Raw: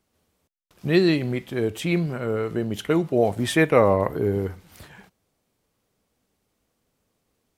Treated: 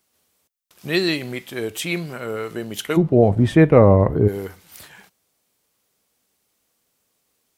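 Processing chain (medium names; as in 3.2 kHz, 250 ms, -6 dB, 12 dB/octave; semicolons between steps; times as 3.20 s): tilt EQ +2.5 dB/octave, from 2.96 s -3.5 dB/octave, from 4.27 s +2.5 dB/octave; trim +1 dB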